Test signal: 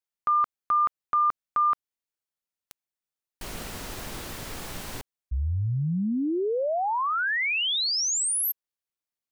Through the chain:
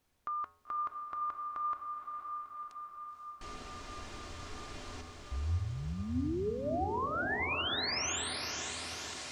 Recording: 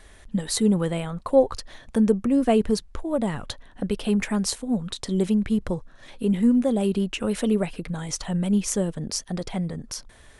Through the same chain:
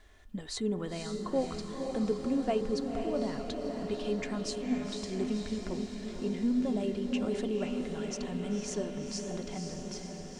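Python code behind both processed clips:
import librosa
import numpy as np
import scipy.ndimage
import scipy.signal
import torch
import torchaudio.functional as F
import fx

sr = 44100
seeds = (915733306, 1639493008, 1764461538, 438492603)

p1 = scipy.signal.sosfilt(scipy.signal.butter(4, 7300.0, 'lowpass', fs=sr, output='sos'), x)
p2 = p1 + 0.32 * np.pad(p1, (int(2.9 * sr / 1000.0), 0))[:len(p1)]
p3 = fx.dmg_noise_colour(p2, sr, seeds[0], colour='pink', level_db=-66.0)
p4 = fx.comb_fb(p3, sr, f0_hz=84.0, decay_s=0.98, harmonics='odd', damping=0.6, mix_pct=80)
p5 = p4 + fx.echo_diffused(p4, sr, ms=516, feedback_pct=68, wet_db=-5, dry=0)
y = F.gain(torch.from_numpy(p5), 2.0).numpy()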